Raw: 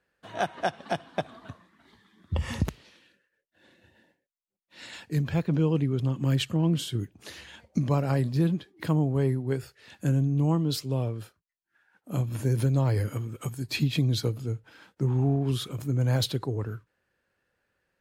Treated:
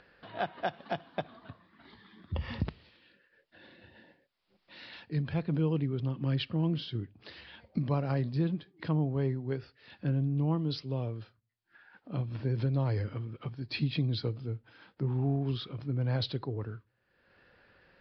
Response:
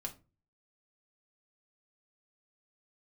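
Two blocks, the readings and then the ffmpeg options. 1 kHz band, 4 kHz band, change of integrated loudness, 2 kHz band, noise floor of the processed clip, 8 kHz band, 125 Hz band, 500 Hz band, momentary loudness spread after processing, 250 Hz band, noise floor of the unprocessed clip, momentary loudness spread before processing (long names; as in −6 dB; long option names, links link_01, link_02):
−5.0 dB, −5.5 dB, −5.5 dB, −5.0 dB, −76 dBFS, below −25 dB, −5.5 dB, −5.5 dB, 12 LU, −5.0 dB, −82 dBFS, 13 LU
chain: -filter_complex "[0:a]acompressor=mode=upward:threshold=-40dB:ratio=2.5,asplit=2[link_01][link_02];[1:a]atrim=start_sample=2205,asetrate=39249,aresample=44100[link_03];[link_02][link_03]afir=irnorm=-1:irlink=0,volume=-18dB[link_04];[link_01][link_04]amix=inputs=2:normalize=0,aresample=11025,aresample=44100,volume=-6dB"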